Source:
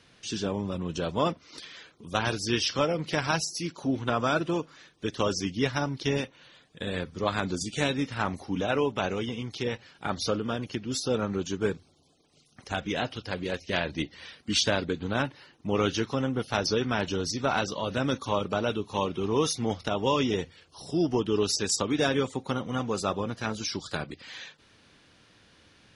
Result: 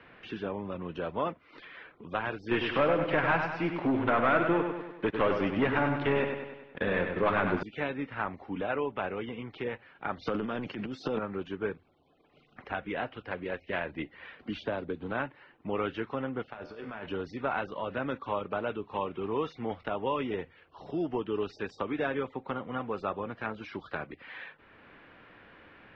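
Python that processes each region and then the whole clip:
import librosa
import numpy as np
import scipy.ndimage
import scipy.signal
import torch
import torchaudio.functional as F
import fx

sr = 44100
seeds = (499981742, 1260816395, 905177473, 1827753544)

y = fx.chain(x, sr, fx.lowpass(hz=3900.0, slope=12),
    fx.leveller(passes=3),
    fx.echo_feedback(ms=98, feedback_pct=47, wet_db=-6.5), at=(2.51, 7.63))
y = fx.chain(y, sr, fx.highpass(hz=150.0, slope=12),
    fx.bass_treble(bass_db=7, treble_db=12),
    fx.transient(attack_db=-9, sustain_db=11), at=(10.23, 11.19))
y = fx.chain(y, sr, fx.peak_eq(hz=2000.0, db=-9.0, octaves=1.5),
    fx.band_squash(depth_pct=40), at=(14.39, 15.11))
y = fx.chain(y, sr, fx.hum_notches(base_hz=60, count=9),
    fx.over_compress(threshold_db=-30.0, ratio=-0.5),
    fx.comb_fb(f0_hz=75.0, decay_s=0.91, harmonics='all', damping=0.0, mix_pct=70), at=(16.5, 17.05))
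y = scipy.signal.sosfilt(scipy.signal.butter(4, 2400.0, 'lowpass', fs=sr, output='sos'), y)
y = fx.peak_eq(y, sr, hz=110.0, db=-8.5, octaves=2.8)
y = fx.band_squash(y, sr, depth_pct=40)
y = F.gain(torch.from_numpy(y), -3.0).numpy()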